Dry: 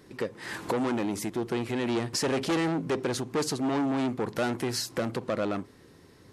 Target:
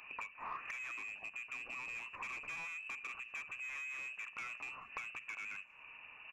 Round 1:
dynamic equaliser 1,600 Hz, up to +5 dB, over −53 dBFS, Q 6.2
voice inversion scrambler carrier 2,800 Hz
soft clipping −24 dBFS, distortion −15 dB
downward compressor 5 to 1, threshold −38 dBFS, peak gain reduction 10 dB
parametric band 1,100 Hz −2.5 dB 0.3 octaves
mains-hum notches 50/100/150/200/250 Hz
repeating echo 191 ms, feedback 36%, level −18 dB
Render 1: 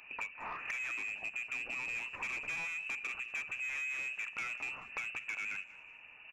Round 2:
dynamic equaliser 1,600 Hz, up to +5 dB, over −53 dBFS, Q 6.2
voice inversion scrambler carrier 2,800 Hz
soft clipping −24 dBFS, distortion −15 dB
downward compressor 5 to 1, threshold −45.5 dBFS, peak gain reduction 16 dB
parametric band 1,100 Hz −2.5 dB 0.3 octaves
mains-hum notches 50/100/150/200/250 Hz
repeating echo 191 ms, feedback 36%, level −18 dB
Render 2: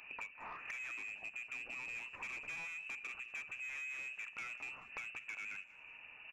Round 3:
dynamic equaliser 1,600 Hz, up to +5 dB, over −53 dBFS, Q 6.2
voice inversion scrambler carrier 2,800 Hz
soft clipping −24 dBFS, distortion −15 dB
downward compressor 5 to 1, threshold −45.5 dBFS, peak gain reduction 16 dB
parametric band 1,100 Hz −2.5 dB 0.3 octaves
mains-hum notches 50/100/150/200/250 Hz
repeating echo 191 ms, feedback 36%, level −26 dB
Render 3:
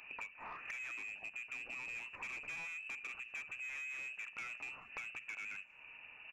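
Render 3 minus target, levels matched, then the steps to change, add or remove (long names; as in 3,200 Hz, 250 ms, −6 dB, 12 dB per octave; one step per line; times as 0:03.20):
1,000 Hz band −4.5 dB
change: parametric band 1,100 Hz +7 dB 0.3 octaves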